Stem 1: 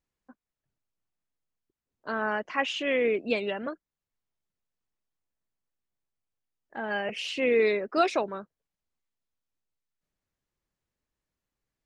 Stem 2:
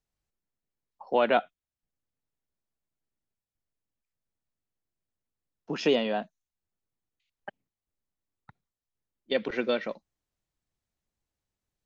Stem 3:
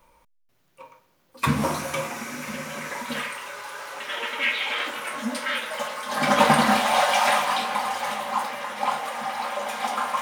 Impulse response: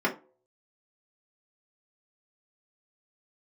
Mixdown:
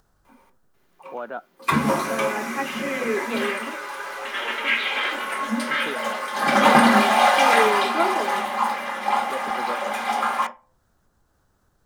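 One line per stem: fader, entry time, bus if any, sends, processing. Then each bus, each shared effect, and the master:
-10.5 dB, 0.00 s, send -5 dB, none
-7.0 dB, 0.00 s, no send, resonant high shelf 1.8 kHz -7 dB, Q 3; upward compressor, threshold -34 dBFS; auto duck -8 dB, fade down 1.50 s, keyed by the first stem
-2.5 dB, 0.25 s, send -9 dB, none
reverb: on, pre-delay 3 ms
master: none

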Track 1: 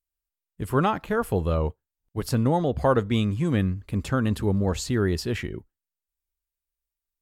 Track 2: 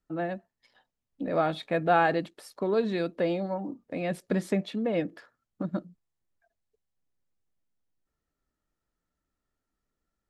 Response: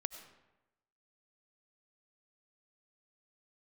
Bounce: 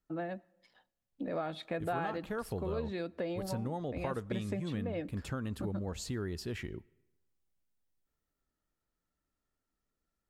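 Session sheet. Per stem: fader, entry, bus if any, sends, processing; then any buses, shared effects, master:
-8.5 dB, 1.20 s, send -17 dB, none
-3.5 dB, 0.00 s, send -21 dB, none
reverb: on, RT60 1.0 s, pre-delay 55 ms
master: compression 3:1, threshold -35 dBFS, peak gain reduction 12 dB

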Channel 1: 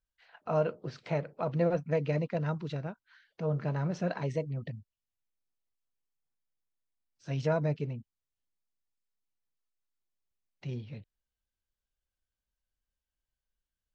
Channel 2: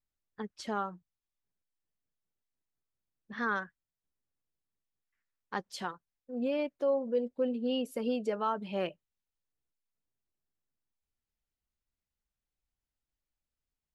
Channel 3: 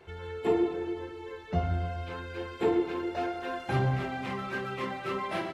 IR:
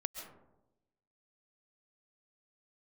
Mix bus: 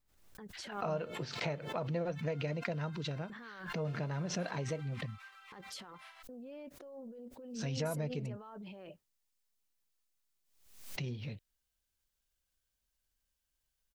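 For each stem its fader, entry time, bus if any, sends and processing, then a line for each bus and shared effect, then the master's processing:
+2.0 dB, 0.35 s, no bus, no send, compression 2.5:1, threshold -40 dBFS, peak gain reduction 12 dB
+0.5 dB, 0.00 s, bus A, no send, gate with hold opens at -57 dBFS; treble shelf 2.4 kHz -11.5 dB; compressor with a negative ratio -43 dBFS, ratio -1
-20.0 dB, 0.70 s, bus A, no send, inverse Chebyshev high-pass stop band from 160 Hz, stop band 80 dB
bus A: 0.0 dB, peak limiter -42.5 dBFS, peak gain reduction 18.5 dB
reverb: none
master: treble shelf 3 kHz +8 dB; swell ahead of each attack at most 74 dB/s

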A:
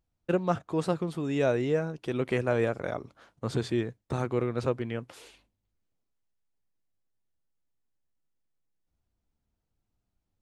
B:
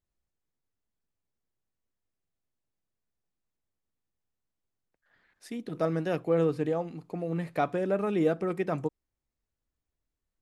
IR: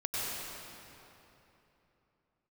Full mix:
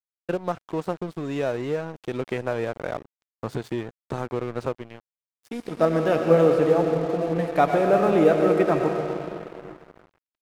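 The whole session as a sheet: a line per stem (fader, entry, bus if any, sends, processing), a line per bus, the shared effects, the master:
+2.5 dB, 0.00 s, no send, compression 3:1, threshold -28 dBFS, peak gain reduction 6.5 dB; auto duck -16 dB, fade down 0.40 s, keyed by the second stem
+2.0 dB, 0.00 s, send -5 dB, bass shelf 72 Hz -8 dB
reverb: on, RT60 3.2 s, pre-delay 89 ms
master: peaking EQ 740 Hz +4.5 dB 2.2 oct; crossover distortion -38.5 dBFS

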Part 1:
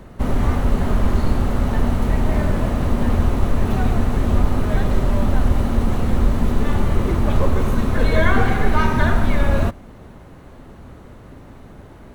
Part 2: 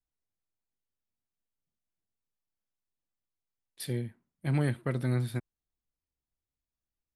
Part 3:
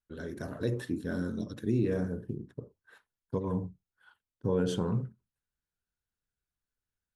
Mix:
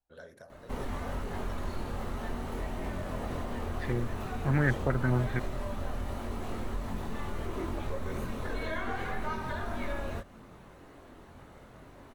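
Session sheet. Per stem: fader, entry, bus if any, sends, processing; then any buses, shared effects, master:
-3.0 dB, 0.50 s, no send, bass shelf 200 Hz -12 dB; compression, threshold -27 dBFS, peak gain reduction 11 dB; chorus voices 4, 0.44 Hz, delay 23 ms, depth 1.6 ms
+0.5 dB, 0.00 s, no send, step-sequenced low-pass 5.1 Hz 840–2200 Hz
-3.5 dB, 0.00 s, no send, resonant low shelf 440 Hz -8.5 dB, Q 3; compression, threshold -40 dBFS, peak gain reduction 13 dB; tremolo triangle 1.3 Hz, depth 65%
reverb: none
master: none

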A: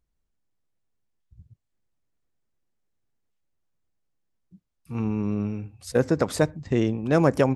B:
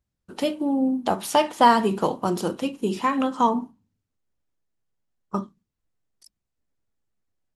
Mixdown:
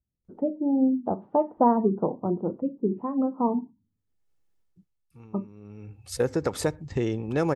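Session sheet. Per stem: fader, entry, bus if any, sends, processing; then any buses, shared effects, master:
+2.5 dB, 0.25 s, no send, compression 2:1, threshold -30 dBFS, peak gain reduction 9 dB; comb 2.3 ms, depth 31%; auto duck -21 dB, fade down 0.75 s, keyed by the second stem
+2.5 dB, 0.00 s, no send, spectral gate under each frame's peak -25 dB strong; Bessel low-pass 570 Hz, order 4; upward expansion 1.5:1, over -31 dBFS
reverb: none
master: none

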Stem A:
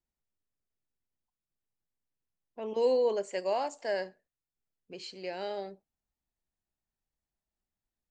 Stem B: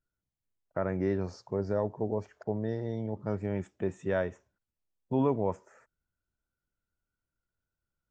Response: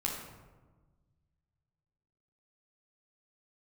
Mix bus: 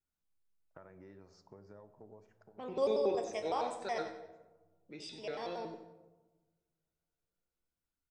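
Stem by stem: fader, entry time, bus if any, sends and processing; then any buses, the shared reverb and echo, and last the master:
0.0 dB, 0.00 s, send -9 dB, echo send -8.5 dB, feedback comb 78 Hz, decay 0.4 s, harmonics all, mix 70%; vibrato with a chosen wave square 5.4 Hz, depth 250 cents
-12.0 dB, 0.00 s, send -13.5 dB, no echo send, bass shelf 370 Hz -7 dB; de-hum 56.52 Hz, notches 13; compression 10:1, threshold -40 dBFS, peak gain reduction 15 dB; auto duck -12 dB, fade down 0.25 s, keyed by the first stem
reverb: on, RT60 1.3 s, pre-delay 9 ms
echo: feedback delay 93 ms, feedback 36%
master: none

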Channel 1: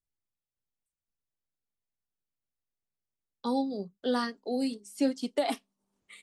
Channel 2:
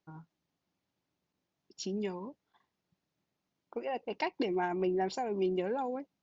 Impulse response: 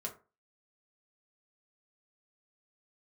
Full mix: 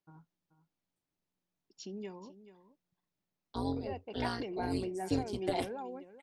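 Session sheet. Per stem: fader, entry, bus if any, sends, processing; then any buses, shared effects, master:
-4.5 dB, 0.10 s, send -16 dB, no echo send, octave divider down 1 oct, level -2 dB; comb 2.9 ms, depth 76%; AM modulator 180 Hz, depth 80%
-7.5 dB, 0.00 s, no send, echo send -14.5 dB, none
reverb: on, RT60 0.35 s, pre-delay 4 ms
echo: delay 432 ms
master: none

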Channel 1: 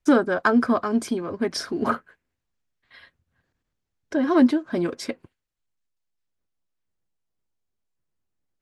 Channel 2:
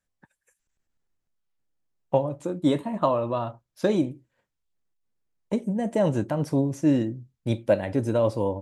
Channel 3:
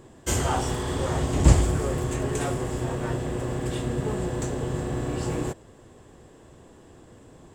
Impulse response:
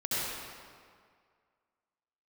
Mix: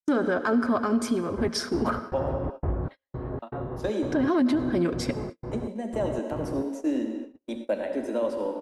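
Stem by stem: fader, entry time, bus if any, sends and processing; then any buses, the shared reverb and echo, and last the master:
-1.0 dB, 0.00 s, send -20.5 dB, bass shelf 140 Hz +6.5 dB
-7.0 dB, 0.00 s, muted 2.32–3.42 s, send -10.5 dB, steep high-pass 210 Hz 72 dB/octave
-5.5 dB, 1.10 s, no send, low-pass 1.4 kHz 24 dB/octave; trance gate ".xx..xx.xxx" 118 bpm -60 dB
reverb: on, RT60 2.0 s, pre-delay 62 ms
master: gate -35 dBFS, range -41 dB; peak limiter -16 dBFS, peak gain reduction 9.5 dB

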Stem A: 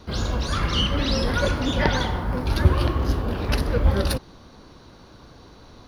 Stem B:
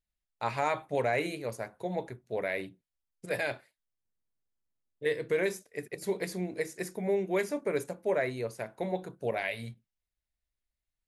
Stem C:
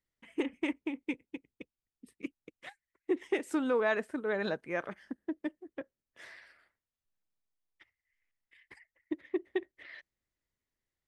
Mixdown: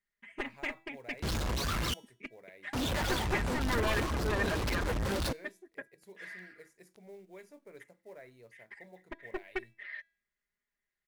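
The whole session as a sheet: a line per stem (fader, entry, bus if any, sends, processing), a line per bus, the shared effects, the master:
-13.0 dB, 1.15 s, muted 1.94–2.73 s, no send, low-pass 7.8 kHz; reverb removal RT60 0.6 s; fuzz box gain 43 dB, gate -37 dBFS
-17.5 dB, 0.00 s, no send, companded quantiser 6-bit
-3.0 dB, 0.00 s, no send, one-sided wavefolder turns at -29 dBFS; peaking EQ 1.8 kHz +11.5 dB 1 oct; comb 4.9 ms, depth 85%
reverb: none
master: feedback comb 330 Hz, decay 0.52 s, mix 40%

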